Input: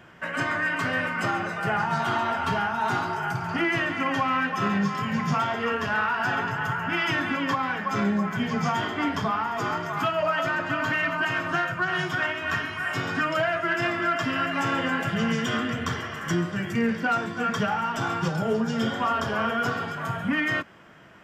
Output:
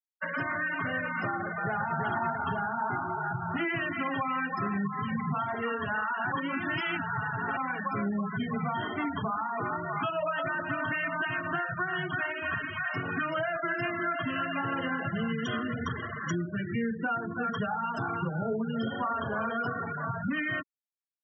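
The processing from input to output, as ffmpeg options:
-filter_complex "[0:a]asplit=2[a][b];[b]afade=t=in:st=1.46:d=0.01,afade=t=out:st=1.97:d=0.01,aecho=0:1:340|680|1020|1360|1700|2040:0.794328|0.357448|0.160851|0.0723832|0.0325724|0.0146576[c];[a][c]amix=inputs=2:normalize=0,asplit=3[d][e][f];[d]atrim=end=6.322[g];[e]atrim=start=6.318:end=7.572,asetpts=PTS-STARTPTS,areverse[h];[f]atrim=start=7.568[i];[g][h]acrossfade=d=0.004:c1=hsin:c2=hsin[j];[j][i]acrossfade=d=0.004:c1=hsin:c2=hsin,acompressor=threshold=-30dB:ratio=2.5,afftfilt=real='re*gte(hypot(re,im),0.0355)':imag='im*gte(hypot(re,im),0.0355)':win_size=1024:overlap=0.75"

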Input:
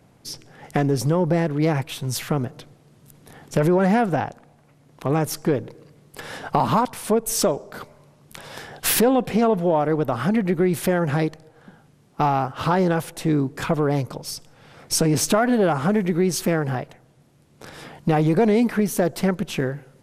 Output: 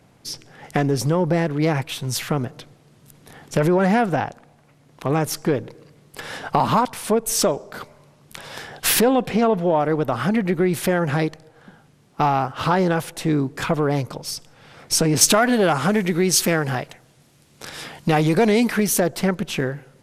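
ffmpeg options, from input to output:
-filter_complex "[0:a]asettb=1/sr,asplit=3[a][b][c];[a]atrim=end=9.284[d];[b]atrim=start=9.28:end=9.8,asetpts=PTS-STARTPTS,afade=t=in:d=0.004:c=qsin,afade=t=out:st=0.516:d=0.004:c=qsin,highshelf=f=9.3k:g=-9[e];[c]atrim=start=9.796[f];[d][e]acrossfade=d=0.004:c1=hsin:c2=qsin[g];[g][f]acrossfade=d=0.004:c1=qsin:c2=hsin,asettb=1/sr,asplit=3[h][i][j];[h]atrim=end=15.214[k];[i]atrim=start=15.21:end=19,asetpts=PTS-STARTPTS,afade=t=in:d=0.004:c=qsin,afade=t=out:st=3.786:d=0.004:c=qsin,highshelf=f=2.3k:g=8[l];[j]atrim=start=18.996[m];[k][l]acrossfade=d=0.004:c1=hsin:c2=qsin[n];[n][m]acrossfade=d=0.004:c1=qsin:c2=hsin,equalizer=f=3.2k:w=0.34:g=3.5"

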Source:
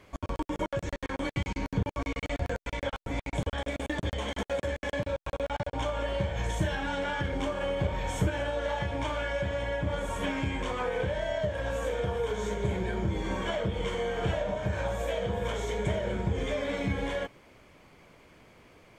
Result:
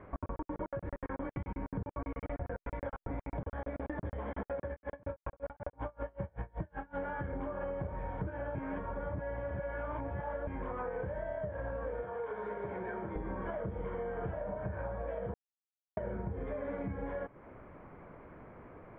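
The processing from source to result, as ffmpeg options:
-filter_complex "[0:a]asplit=3[a][b][c];[a]afade=t=out:st=4.67:d=0.02[d];[b]aeval=exprs='val(0)*pow(10,-33*(0.5-0.5*cos(2*PI*5.3*n/s))/20)':c=same,afade=t=in:st=4.67:d=0.02,afade=t=out:st=6.96:d=0.02[e];[c]afade=t=in:st=6.96:d=0.02[f];[d][e][f]amix=inputs=3:normalize=0,asettb=1/sr,asplit=3[g][h][i];[g]atrim=end=12.034[j];[h]atrim=start=12.03:end=13.16,asetpts=PTS-STARTPTS,afade=t=in:d=0.004:c=qsin,afade=t=out:st=1.126:d=0.004:c=qsin,highpass=f=710:p=1[k];[i]atrim=start=13.156[l];[j][k]acrossfade=d=0.004:c1=hsin:c2=qsin[m];[m][l]acrossfade=d=0.004:c1=qsin:c2=hsin,asplit=5[n][o][p][q][r];[n]atrim=end=8.552[s];[o]atrim=start=8.548:end=10.472,asetpts=PTS-STARTPTS,areverse[t];[p]atrim=start=10.468:end=15.34,asetpts=PTS-STARTPTS,afade=t=out:st=4.868:d=0.004:c=hsin[u];[q]atrim=start=15.34:end=15.97,asetpts=PTS-STARTPTS,volume=0[v];[r]atrim=start=15.97,asetpts=PTS-STARTPTS,afade=t=in:d=0.004:c=hsin[w];[s][t]acrossfade=d=0.004:c1=hsin:c2=hsin[x];[u][v][w]concat=n=3:v=0:a=1[y];[x][y]acrossfade=d=0.004:c1=hsin:c2=hsin,lowpass=f=1.6k:w=0.5412,lowpass=f=1.6k:w=1.3066,acompressor=threshold=-41dB:ratio=6,volume=5dB"

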